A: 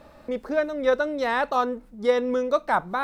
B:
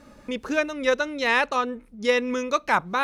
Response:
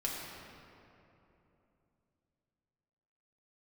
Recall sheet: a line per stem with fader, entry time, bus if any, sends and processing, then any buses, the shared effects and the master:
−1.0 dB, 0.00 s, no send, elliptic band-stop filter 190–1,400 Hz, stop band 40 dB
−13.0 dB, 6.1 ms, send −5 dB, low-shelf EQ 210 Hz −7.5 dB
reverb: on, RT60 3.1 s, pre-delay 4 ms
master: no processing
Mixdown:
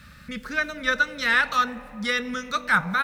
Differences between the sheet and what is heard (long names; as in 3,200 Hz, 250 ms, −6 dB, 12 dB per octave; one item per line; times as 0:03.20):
stem A −1.0 dB → +9.5 dB
master: extra high-pass filter 44 Hz